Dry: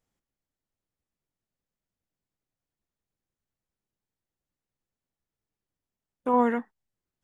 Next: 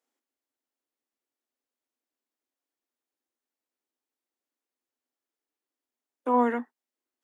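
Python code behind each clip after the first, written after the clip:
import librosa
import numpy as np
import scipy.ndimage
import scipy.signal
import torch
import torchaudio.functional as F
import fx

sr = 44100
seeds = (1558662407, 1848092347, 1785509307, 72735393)

y = scipy.signal.sosfilt(scipy.signal.cheby1(6, 1.0, 240.0, 'highpass', fs=sr, output='sos'), x)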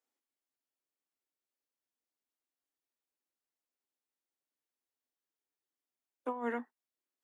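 y = fx.low_shelf(x, sr, hz=170.0, db=-8.0)
y = fx.over_compress(y, sr, threshold_db=-26.0, ratio=-0.5)
y = y * 10.0 ** (-8.5 / 20.0)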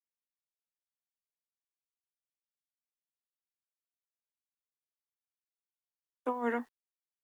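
y = fx.quant_dither(x, sr, seeds[0], bits=12, dither='none')
y = y * 10.0 ** (3.5 / 20.0)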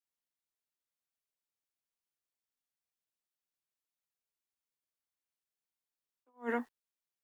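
y = fx.attack_slew(x, sr, db_per_s=260.0)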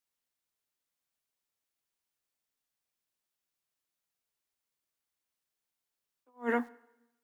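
y = fx.rev_plate(x, sr, seeds[1], rt60_s=0.93, hf_ratio=0.9, predelay_ms=0, drr_db=19.0)
y = y * 10.0 ** (4.5 / 20.0)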